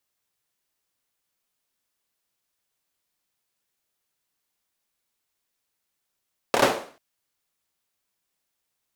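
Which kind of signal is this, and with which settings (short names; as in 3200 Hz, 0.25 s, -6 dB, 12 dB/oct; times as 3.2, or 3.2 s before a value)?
hand clap length 0.44 s, bursts 4, apart 27 ms, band 510 Hz, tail 0.46 s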